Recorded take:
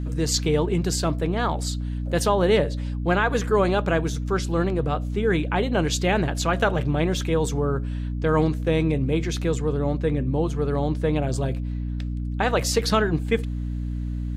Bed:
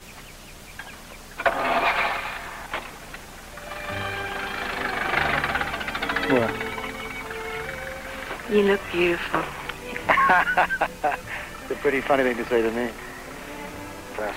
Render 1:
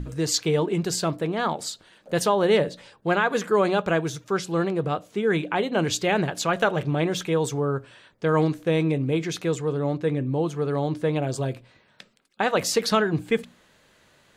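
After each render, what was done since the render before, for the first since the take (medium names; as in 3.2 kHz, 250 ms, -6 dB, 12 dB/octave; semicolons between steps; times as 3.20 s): hum notches 60/120/180/240/300 Hz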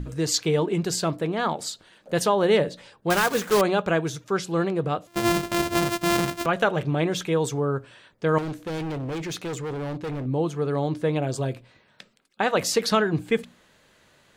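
3.10–3.63 s: block-companded coder 3-bit; 5.07–6.46 s: sorted samples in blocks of 128 samples; 8.38–10.26 s: hard clipper -28 dBFS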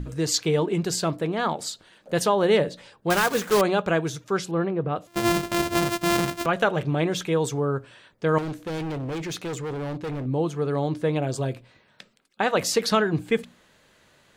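4.51–4.96 s: distance through air 390 m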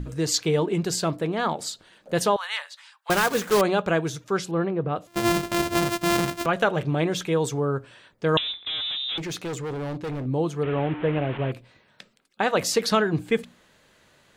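2.36–3.10 s: steep high-pass 950 Hz; 8.37–9.18 s: frequency inversion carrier 3.8 kHz; 10.63–11.52 s: one-bit delta coder 16 kbps, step -28.5 dBFS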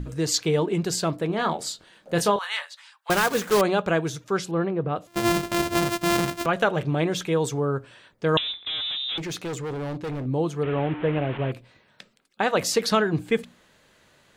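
1.27–2.65 s: doubling 24 ms -7.5 dB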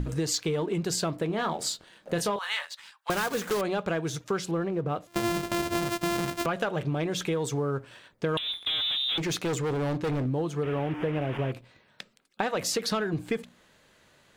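waveshaping leveller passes 1; compression, threshold -26 dBFS, peak gain reduction 11.5 dB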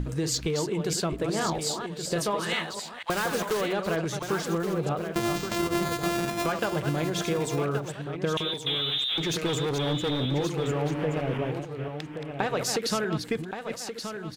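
chunks repeated in reverse 233 ms, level -7 dB; delay 1125 ms -8 dB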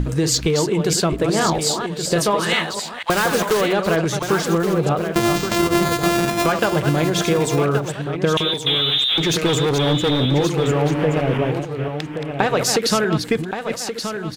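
trim +9.5 dB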